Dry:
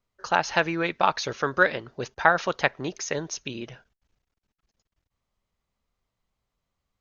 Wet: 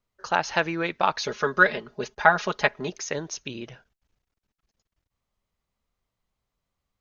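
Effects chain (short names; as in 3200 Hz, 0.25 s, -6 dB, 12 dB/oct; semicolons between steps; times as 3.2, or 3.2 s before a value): 1.19–2.9 comb 4.8 ms, depth 75%; gain -1 dB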